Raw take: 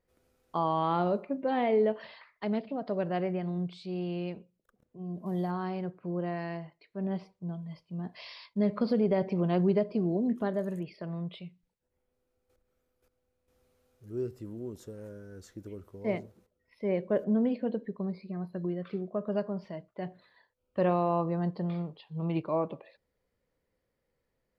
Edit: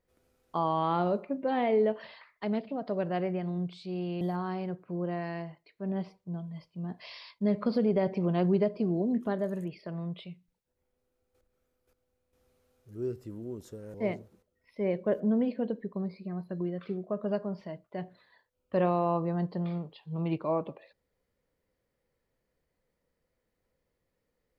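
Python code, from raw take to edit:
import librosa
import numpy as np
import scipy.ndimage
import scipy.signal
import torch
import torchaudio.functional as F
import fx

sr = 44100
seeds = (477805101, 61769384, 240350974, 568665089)

y = fx.edit(x, sr, fx.cut(start_s=4.21, length_s=1.15),
    fx.cut(start_s=15.09, length_s=0.89), tone=tone)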